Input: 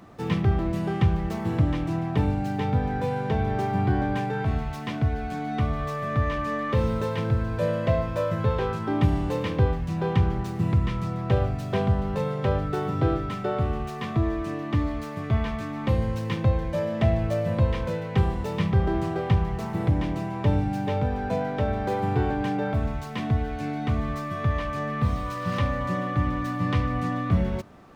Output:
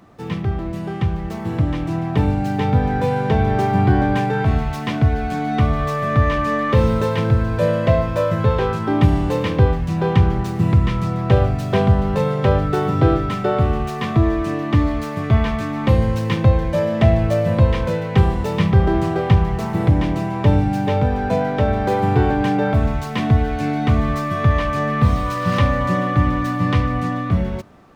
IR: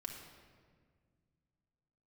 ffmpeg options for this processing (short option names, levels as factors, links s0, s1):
-af "dynaudnorm=f=570:g=7:m=3.55"